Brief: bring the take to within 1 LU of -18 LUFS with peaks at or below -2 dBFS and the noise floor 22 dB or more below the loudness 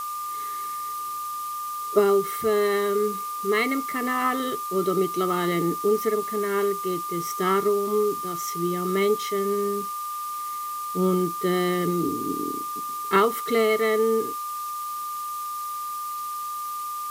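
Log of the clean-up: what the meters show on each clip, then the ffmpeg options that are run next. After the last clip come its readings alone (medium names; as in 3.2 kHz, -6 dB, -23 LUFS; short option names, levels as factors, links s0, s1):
steady tone 1.2 kHz; tone level -29 dBFS; noise floor -32 dBFS; noise floor target -48 dBFS; loudness -25.5 LUFS; peak level -5.0 dBFS; loudness target -18.0 LUFS
-> -af "bandreject=f=1200:w=30"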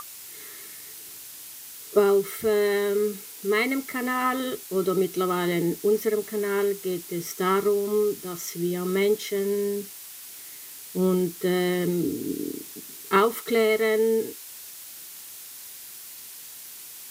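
steady tone not found; noise floor -42 dBFS; noise floor target -47 dBFS
-> -af "afftdn=nr=6:nf=-42"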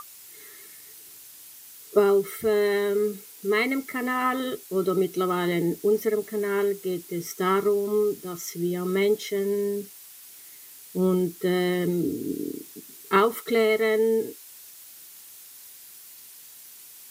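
noise floor -47 dBFS; noise floor target -48 dBFS
-> -af "afftdn=nr=6:nf=-47"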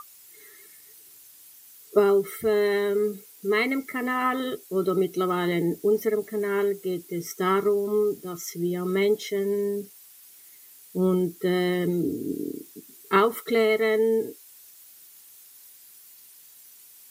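noise floor -51 dBFS; loudness -25.5 LUFS; peak level -5.5 dBFS; loudness target -18.0 LUFS
-> -af "volume=2.37,alimiter=limit=0.794:level=0:latency=1"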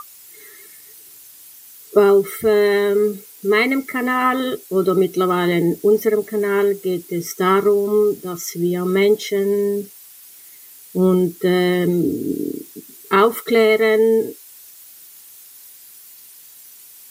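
loudness -18.0 LUFS; peak level -2.0 dBFS; noise floor -43 dBFS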